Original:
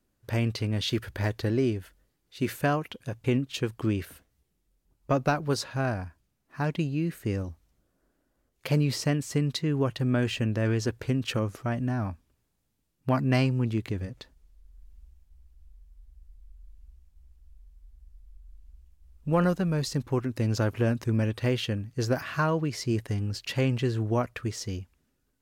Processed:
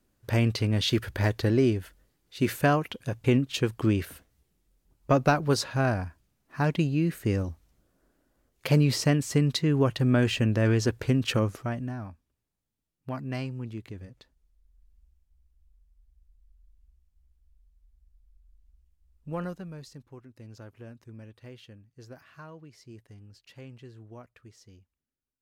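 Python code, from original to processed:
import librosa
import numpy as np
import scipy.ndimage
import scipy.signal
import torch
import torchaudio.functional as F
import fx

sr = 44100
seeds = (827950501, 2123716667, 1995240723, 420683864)

y = fx.gain(x, sr, db=fx.line((11.44, 3.0), (12.1, -9.5), (19.38, -9.5), (20.14, -20.0)))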